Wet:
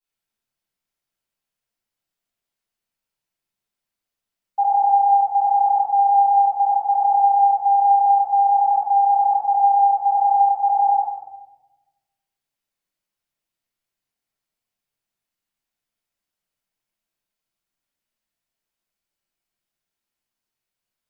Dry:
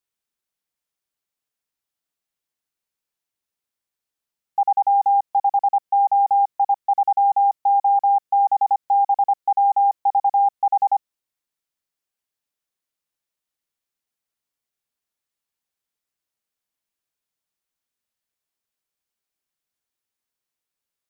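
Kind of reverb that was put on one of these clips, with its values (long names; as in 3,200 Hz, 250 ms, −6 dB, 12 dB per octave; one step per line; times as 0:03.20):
rectangular room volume 560 cubic metres, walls mixed, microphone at 9.1 metres
level −14 dB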